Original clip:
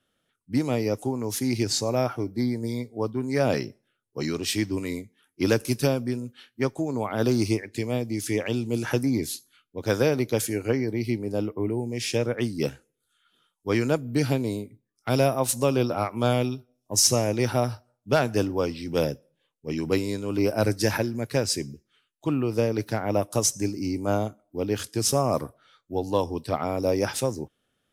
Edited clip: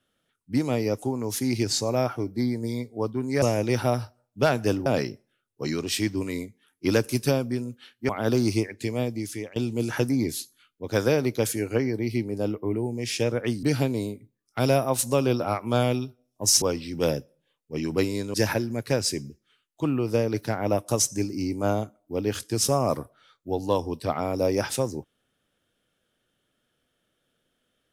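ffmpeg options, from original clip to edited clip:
-filter_complex "[0:a]asplit=8[s0][s1][s2][s3][s4][s5][s6][s7];[s0]atrim=end=3.422[s8];[s1]atrim=start=17.118:end=18.562[s9];[s2]atrim=start=3.418:end=6.652[s10];[s3]atrim=start=7.028:end=8.5,asetpts=PTS-STARTPTS,afade=t=out:st=1.012:d=0.46:silence=0.0944061[s11];[s4]atrim=start=8.5:end=12.572,asetpts=PTS-STARTPTS,afade=t=in:d=0.004:c=hsin:silence=0.0944061[s12];[s5]atrim=start=14.128:end=17.122[s13];[s6]atrim=start=18.558:end=20.282[s14];[s7]atrim=start=20.778[s15];[s8][s9]acrossfade=d=0.004:c1=hsin:c2=hsin[s16];[s16][s10]acrossfade=d=0.004:c1=hsin:c2=hsin[s17];[s11][s12]concat=n=2:v=0:a=1[s18];[s17][s18]acrossfade=d=0.004:c1=hsin:c2=hsin[s19];[s19][s13]acrossfade=d=0.004:c1=hsin:c2=hsin[s20];[s20][s14]acrossfade=d=0.004:c1=hsin:c2=hsin[s21];[s21][s15]acrossfade=d=0.004:c1=hsin:c2=hsin"

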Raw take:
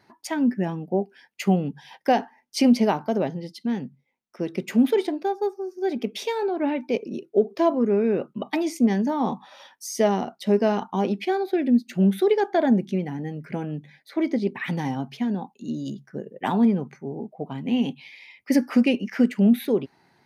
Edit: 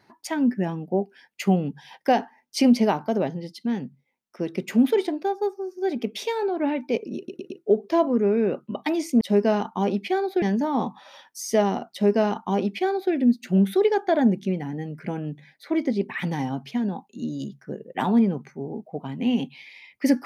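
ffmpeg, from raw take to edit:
-filter_complex "[0:a]asplit=6[s0][s1][s2][s3][s4][s5];[s0]atrim=end=7.282[s6];[s1]atrim=start=7.168:end=7.282[s7];[s2]atrim=start=7.168:end=7.282[s8];[s3]atrim=start=7.168:end=8.882[s9];[s4]atrim=start=10.378:end=11.592[s10];[s5]atrim=start=8.878[s11];[s6][s7]acrossfade=d=0.004:c1=hsin:c2=hsin[s12];[s12][s8]acrossfade=d=0.004:c1=hsin:c2=hsin[s13];[s13][s9]acrossfade=d=0.004:c1=hsin:c2=hsin[s14];[s14][s10]acrossfade=d=0.004:c1=hsin:c2=hsin[s15];[s15][s11]acrossfade=d=0.004:c1=hsin:c2=hsin"

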